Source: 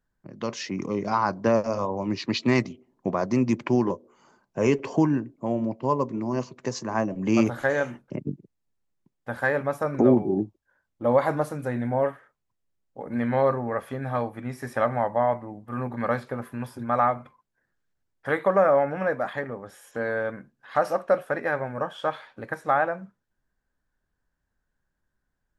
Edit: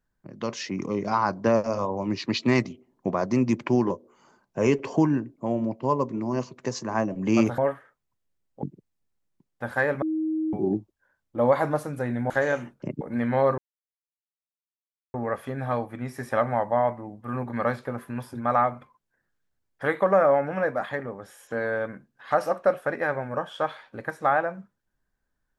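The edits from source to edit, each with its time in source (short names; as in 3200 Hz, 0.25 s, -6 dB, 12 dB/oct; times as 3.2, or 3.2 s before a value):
7.58–8.29 swap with 11.96–13.01
9.68–10.19 bleep 315 Hz -23.5 dBFS
13.58 insert silence 1.56 s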